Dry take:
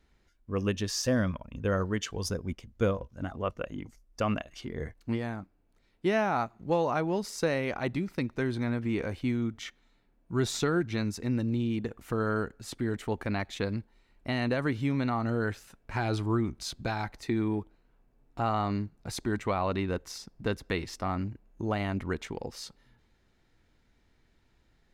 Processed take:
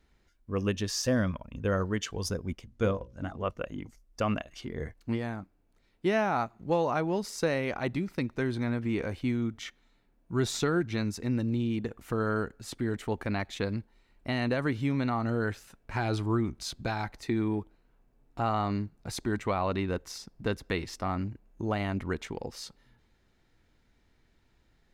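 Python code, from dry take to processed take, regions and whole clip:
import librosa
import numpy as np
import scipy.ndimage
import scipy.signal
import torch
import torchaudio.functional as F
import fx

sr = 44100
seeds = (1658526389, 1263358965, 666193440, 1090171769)

y = fx.chain(x, sr, fx.lowpass(hz=11000.0, slope=12),
    fx.hum_notches(base_hz=60, count=10), at=(2.67, 3.45))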